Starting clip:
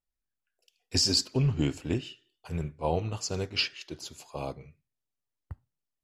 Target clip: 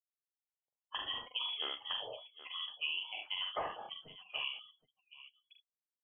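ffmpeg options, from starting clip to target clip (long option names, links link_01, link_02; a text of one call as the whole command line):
ffmpeg -i in.wav -af "highpass=frequency=200:width=0.5412,highpass=frequency=200:width=1.3066,afftdn=noise_reduction=34:noise_floor=-46,equalizer=frequency=280:width_type=o:width=0.92:gain=-14.5,aecho=1:1:44|73|771:0.668|0.355|0.112,lowpass=frequency=3000:width_type=q:width=0.5098,lowpass=frequency=3000:width_type=q:width=0.6013,lowpass=frequency=3000:width_type=q:width=0.9,lowpass=frequency=3000:width_type=q:width=2.563,afreqshift=-3500,acompressor=threshold=-37dB:ratio=6,volume=2dB" out.wav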